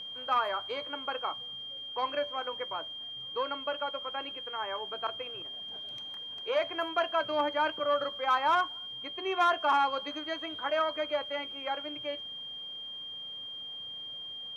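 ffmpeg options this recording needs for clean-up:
-af "bandreject=f=3200:w=30"

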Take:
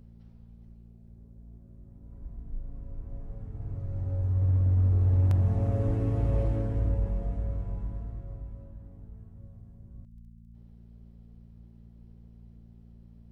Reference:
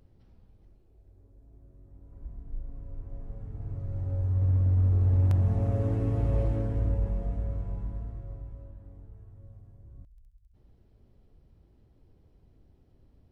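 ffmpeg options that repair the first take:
-filter_complex "[0:a]bandreject=f=57.2:t=h:w=4,bandreject=f=114.4:t=h:w=4,bandreject=f=171.6:t=h:w=4,bandreject=f=228.8:t=h:w=4,asplit=3[s0][s1][s2];[s0]afade=t=out:st=5.86:d=0.02[s3];[s1]highpass=f=140:w=0.5412,highpass=f=140:w=1.3066,afade=t=in:st=5.86:d=0.02,afade=t=out:st=5.98:d=0.02[s4];[s2]afade=t=in:st=5.98:d=0.02[s5];[s3][s4][s5]amix=inputs=3:normalize=0"

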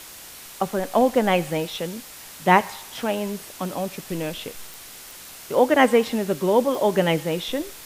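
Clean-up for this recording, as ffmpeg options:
-af "adeclick=t=4,afwtdn=0.01"

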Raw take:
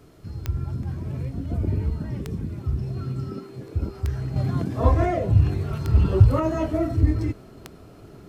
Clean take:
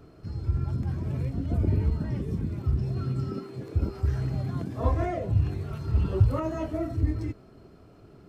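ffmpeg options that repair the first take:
-af "adeclick=t=4,agate=range=0.0891:threshold=0.0141,asetnsamples=n=441:p=0,asendcmd='4.36 volume volume -6.5dB',volume=1"

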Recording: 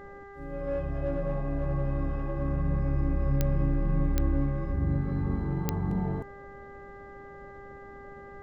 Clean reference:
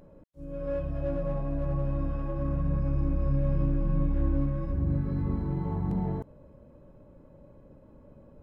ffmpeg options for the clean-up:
-af "adeclick=t=4,bandreject=f=399.2:t=h:w=4,bandreject=f=798.4:t=h:w=4,bandreject=f=1197.6:t=h:w=4,bandreject=f=1596.8:t=h:w=4,bandreject=f=1996:t=h:w=4,agate=range=0.0891:threshold=0.0126"

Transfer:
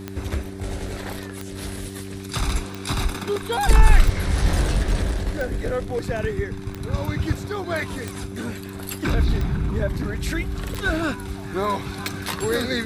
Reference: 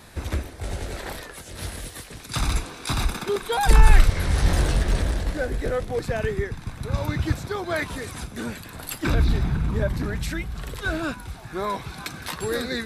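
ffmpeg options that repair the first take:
-af "adeclick=t=4,bandreject=f=96.9:t=h:w=4,bandreject=f=193.8:t=h:w=4,bandreject=f=290.7:t=h:w=4,bandreject=f=387.6:t=h:w=4,asetnsamples=n=441:p=0,asendcmd='10.26 volume volume -3.5dB',volume=1"

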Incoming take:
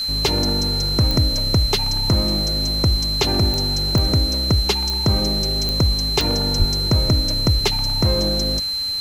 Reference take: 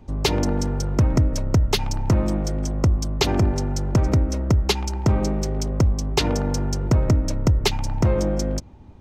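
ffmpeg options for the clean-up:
-filter_complex "[0:a]adeclick=t=4,bandreject=f=4100:w=30,asplit=3[s0][s1][s2];[s0]afade=t=out:st=6.58:d=0.02[s3];[s1]highpass=f=140:w=0.5412,highpass=f=140:w=1.3066,afade=t=in:st=6.58:d=0.02,afade=t=out:st=6.7:d=0.02[s4];[s2]afade=t=in:st=6.7:d=0.02[s5];[s3][s4][s5]amix=inputs=3:normalize=0,afwtdn=0.011"

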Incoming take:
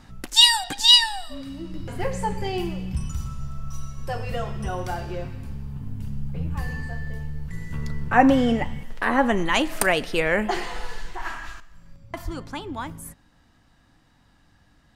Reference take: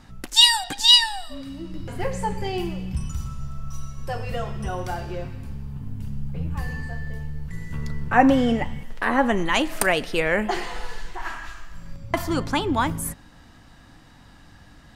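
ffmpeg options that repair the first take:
-filter_complex "[0:a]asplit=3[s0][s1][s2];[s0]afade=t=out:st=12.24:d=0.02[s3];[s1]highpass=f=140:w=0.5412,highpass=f=140:w=1.3066,afade=t=in:st=12.24:d=0.02,afade=t=out:st=12.36:d=0.02[s4];[s2]afade=t=in:st=12.36:d=0.02[s5];[s3][s4][s5]amix=inputs=3:normalize=0,asetnsamples=n=441:p=0,asendcmd='11.6 volume volume 10dB',volume=1"

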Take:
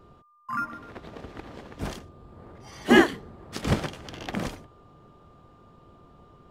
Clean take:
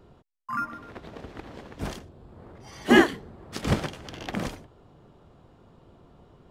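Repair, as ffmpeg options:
-af "bandreject=f=1200:w=30"

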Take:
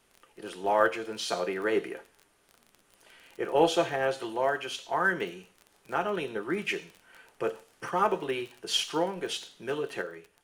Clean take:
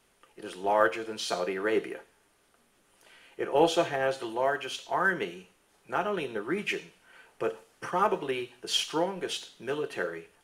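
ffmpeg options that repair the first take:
-af "adeclick=t=4,asetnsamples=n=441:p=0,asendcmd='10.01 volume volume 5.5dB',volume=1"

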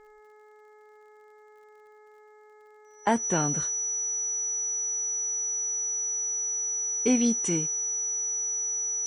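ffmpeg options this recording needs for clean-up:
-af "adeclick=t=4,bandreject=f=424.4:t=h:w=4,bandreject=f=848.8:t=h:w=4,bandreject=f=1273.2:t=h:w=4,bandreject=f=1697.6:t=h:w=4,bandreject=f=2122:t=h:w=4,bandreject=f=5900:w=30,agate=range=0.0891:threshold=0.00501"

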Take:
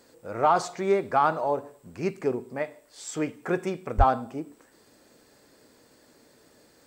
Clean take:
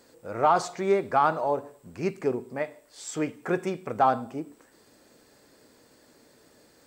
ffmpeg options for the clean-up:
-filter_complex "[0:a]asplit=3[s0][s1][s2];[s0]afade=t=out:st=3.97:d=0.02[s3];[s1]highpass=f=140:w=0.5412,highpass=f=140:w=1.3066,afade=t=in:st=3.97:d=0.02,afade=t=out:st=4.09:d=0.02[s4];[s2]afade=t=in:st=4.09:d=0.02[s5];[s3][s4][s5]amix=inputs=3:normalize=0"

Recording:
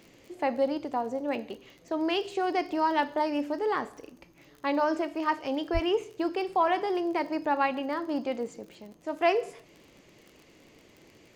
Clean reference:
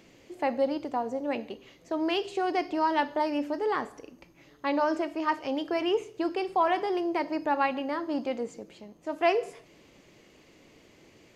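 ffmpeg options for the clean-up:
-filter_complex "[0:a]adeclick=t=4,asplit=3[s0][s1][s2];[s0]afade=t=out:st=5.73:d=0.02[s3];[s1]highpass=f=140:w=0.5412,highpass=f=140:w=1.3066,afade=t=in:st=5.73:d=0.02,afade=t=out:st=5.85:d=0.02[s4];[s2]afade=t=in:st=5.85:d=0.02[s5];[s3][s4][s5]amix=inputs=3:normalize=0"

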